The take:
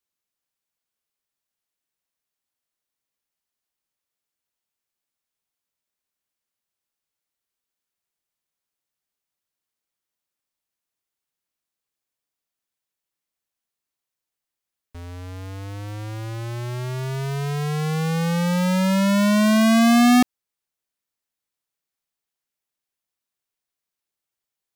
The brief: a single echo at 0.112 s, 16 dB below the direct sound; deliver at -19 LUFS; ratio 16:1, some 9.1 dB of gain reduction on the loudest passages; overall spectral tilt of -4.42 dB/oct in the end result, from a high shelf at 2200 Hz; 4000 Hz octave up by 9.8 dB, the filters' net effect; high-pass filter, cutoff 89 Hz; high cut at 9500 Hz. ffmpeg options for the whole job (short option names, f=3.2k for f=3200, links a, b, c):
-af "highpass=89,lowpass=9.5k,highshelf=f=2.2k:g=8,equalizer=f=4k:t=o:g=5,acompressor=threshold=-17dB:ratio=16,aecho=1:1:112:0.158,volume=5.5dB"